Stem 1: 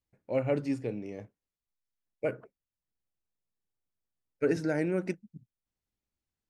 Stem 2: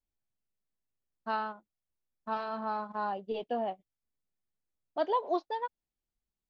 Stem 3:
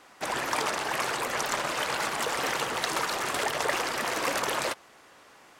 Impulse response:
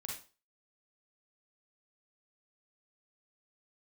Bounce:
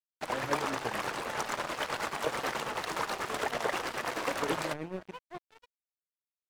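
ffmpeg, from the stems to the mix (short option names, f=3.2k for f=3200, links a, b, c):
-filter_complex "[0:a]volume=-3.5dB,asplit=2[a][b];[1:a]lowshelf=f=420:g=-5,volume=-3.5dB[c];[2:a]volume=1.5dB[d];[b]apad=whole_len=286426[e];[c][e]sidechaincompress=threshold=-36dB:ratio=3:attack=8.4:release=390[f];[a][f][d]amix=inputs=3:normalize=0,highshelf=f=3.2k:g=-8.5,tremolo=f=9.3:d=0.45,aeval=exprs='sgn(val(0))*max(abs(val(0))-0.0112,0)':c=same"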